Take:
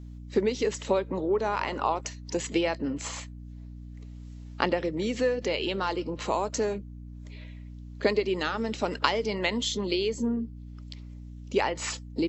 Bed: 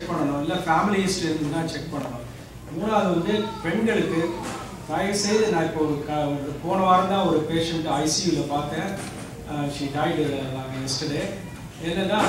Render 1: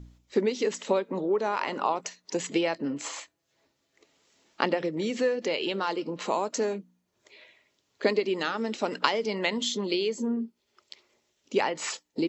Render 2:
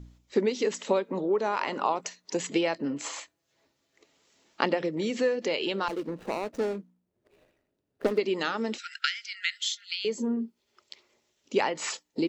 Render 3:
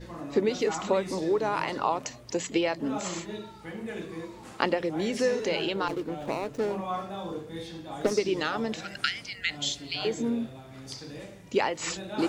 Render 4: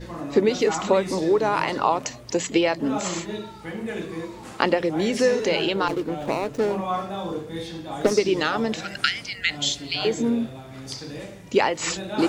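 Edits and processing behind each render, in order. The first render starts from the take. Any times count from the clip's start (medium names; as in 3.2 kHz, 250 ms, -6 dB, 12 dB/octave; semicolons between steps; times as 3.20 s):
de-hum 60 Hz, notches 5
5.88–8.18 s: median filter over 41 samples; 8.78–10.05 s: brick-wall FIR high-pass 1.3 kHz
add bed -15 dB
trim +6 dB; peak limiter -1 dBFS, peak gain reduction 2 dB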